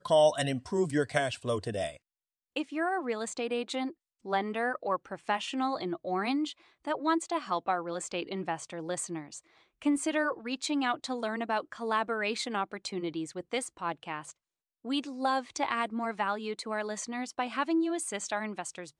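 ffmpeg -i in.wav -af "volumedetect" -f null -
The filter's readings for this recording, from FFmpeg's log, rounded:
mean_volume: -32.5 dB
max_volume: -12.1 dB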